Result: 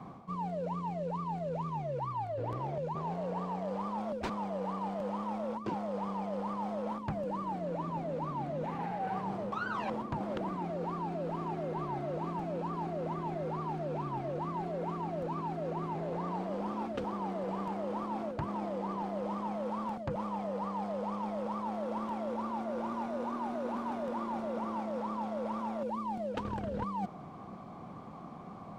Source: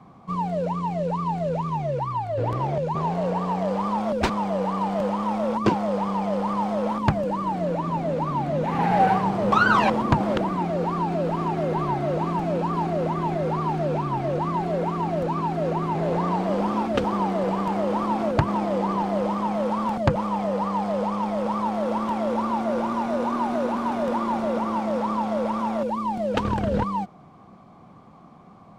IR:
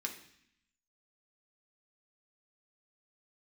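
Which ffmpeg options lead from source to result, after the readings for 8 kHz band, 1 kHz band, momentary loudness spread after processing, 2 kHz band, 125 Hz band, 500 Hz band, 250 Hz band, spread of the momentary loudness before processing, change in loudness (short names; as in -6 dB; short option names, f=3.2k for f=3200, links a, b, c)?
n/a, -12.0 dB, 1 LU, -16.0 dB, -12.5 dB, -11.5 dB, -12.0 dB, 4 LU, -12.0 dB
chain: -af "equalizer=f=470:w=0.35:g=3,areverse,acompressor=threshold=-33dB:ratio=12,areverse"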